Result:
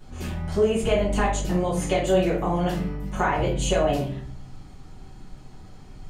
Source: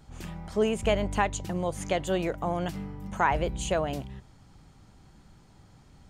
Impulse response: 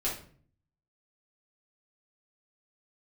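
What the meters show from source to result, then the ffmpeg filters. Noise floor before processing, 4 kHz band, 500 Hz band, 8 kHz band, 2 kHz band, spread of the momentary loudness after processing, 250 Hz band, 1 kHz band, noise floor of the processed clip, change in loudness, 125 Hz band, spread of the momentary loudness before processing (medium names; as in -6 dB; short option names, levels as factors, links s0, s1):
-56 dBFS, +5.0 dB, +6.0 dB, +5.0 dB, +2.5 dB, 11 LU, +6.0 dB, +2.5 dB, -44 dBFS, +5.0 dB, +7.0 dB, 12 LU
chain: -filter_complex "[0:a]acompressor=threshold=0.0501:ratio=6[s0];[1:a]atrim=start_sample=2205[s1];[s0][s1]afir=irnorm=-1:irlink=0,volume=1.26"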